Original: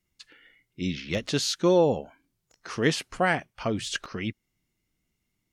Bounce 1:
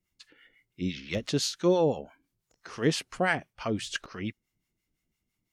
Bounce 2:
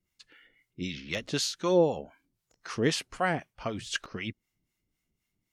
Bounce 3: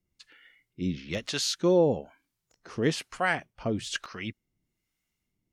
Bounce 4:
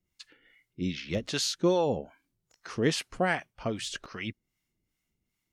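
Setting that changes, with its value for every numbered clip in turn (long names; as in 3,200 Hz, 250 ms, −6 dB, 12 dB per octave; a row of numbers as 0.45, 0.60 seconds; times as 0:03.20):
two-band tremolo in antiphase, speed: 5.9, 3.9, 1.1, 2.5 Hertz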